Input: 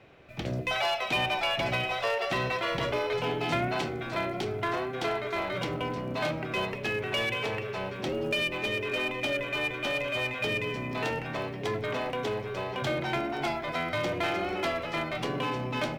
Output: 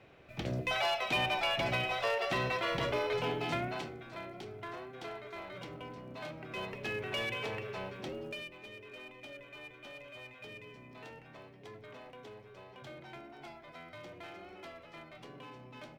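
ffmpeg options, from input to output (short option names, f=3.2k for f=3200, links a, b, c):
-af "volume=3.5dB,afade=t=out:st=3.21:d=0.83:silence=0.316228,afade=t=in:st=6.34:d=0.57:silence=0.446684,afade=t=out:st=7.79:d=0.75:silence=0.237137"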